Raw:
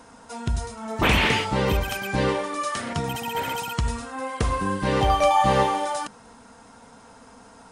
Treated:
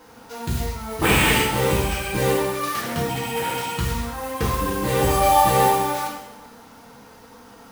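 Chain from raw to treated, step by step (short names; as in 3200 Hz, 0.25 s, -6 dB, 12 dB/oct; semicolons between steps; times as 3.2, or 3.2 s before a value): careless resampling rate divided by 4×, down none, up hold; modulation noise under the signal 16 dB; two-slope reverb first 0.74 s, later 2 s, DRR -6 dB; gain -4 dB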